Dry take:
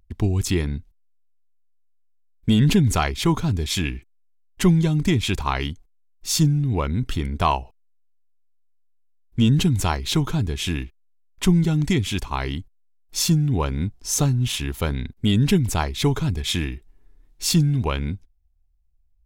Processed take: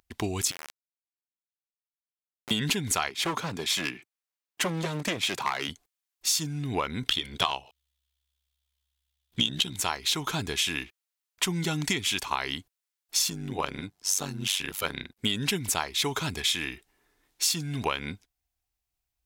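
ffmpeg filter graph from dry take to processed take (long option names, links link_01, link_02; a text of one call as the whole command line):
ffmpeg -i in.wav -filter_complex "[0:a]asettb=1/sr,asplit=3[link_01][link_02][link_03];[link_01]atrim=end=0.514[link_04];[link_02]atrim=start=0.51:end=2.51,asetpts=PTS-STARTPTS,afade=type=in:duration=0.004:curve=qsin,afade=type=out:start_time=1.996:duration=0.004:curve=qsin,equalizer=frequency=66:width_type=o:width=1:gain=-3,acompressor=threshold=-36dB:ratio=6:attack=3.2:release=140:knee=1:detection=peak,aeval=exprs='val(0)*gte(abs(val(0)),0.0282)':channel_layout=same[link_05];[link_03]atrim=start=2.506[link_06];[link_04][link_05]acrossfade=duration=0.004:curve1=hsin:curve2=qsin[link_07];[link_07][link_06]acrossfade=duration=0.004:curve1=qsin:curve2=hsin,asettb=1/sr,asplit=3[link_08][link_09][link_10];[link_08]atrim=end=3.094[link_11];[link_09]atrim=start=3.09:end=5.69,asetpts=PTS-STARTPTS,afade=type=in:duration=0.004:curve=qsin,afade=type=out:start_time=2.596:duration=0.004:curve=qsin,highpass=frequency=120:width=0.5412,highpass=frequency=120:width=1.3066,highshelf=frequency=2800:gain=-6.5,aeval=exprs='clip(val(0),-1,0.0531)':channel_layout=same[link_12];[link_10]atrim=start=5.686[link_13];[link_11][link_12]acrossfade=duration=0.004:curve1=hsin:curve2=qsin[link_14];[link_14][link_13]acrossfade=duration=0.004:curve1=qsin:curve2=hsin,asettb=1/sr,asplit=3[link_15][link_16][link_17];[link_15]atrim=end=7.054[link_18];[link_16]atrim=start=7.05:end=9.76,asetpts=PTS-STARTPTS,afade=type=in:duration=0.004:curve=qsin,afade=type=out:start_time=2.706:duration=0.004:curve=qsin,equalizer=frequency=3400:width=2.9:gain=13,acontrast=32,tremolo=f=67:d=0.75[link_19];[link_17]atrim=start=9.756[link_20];[link_18][link_19]acrossfade=duration=0.004:curve1=hsin:curve2=qsin[link_21];[link_21][link_20]acrossfade=duration=0.004:curve1=qsin:curve2=hsin,asettb=1/sr,asplit=3[link_22][link_23][link_24];[link_22]atrim=end=13.304[link_25];[link_23]atrim=start=13.3:end=15.19,asetpts=PTS-STARTPTS,afade=type=in:duration=0.004:curve=qsin,afade=type=out:start_time=1.886:duration=0.004:curve=qsin,highpass=41,tremolo=f=96:d=0.857[link_26];[link_24]atrim=start=15.186[link_27];[link_25][link_26]acrossfade=duration=0.004:curve1=hsin:curve2=qsin[link_28];[link_28][link_27]acrossfade=duration=0.004:curve1=qsin:curve2=hsin,highpass=frequency=1200:poles=1,acompressor=threshold=-32dB:ratio=6,volume=8dB" out.wav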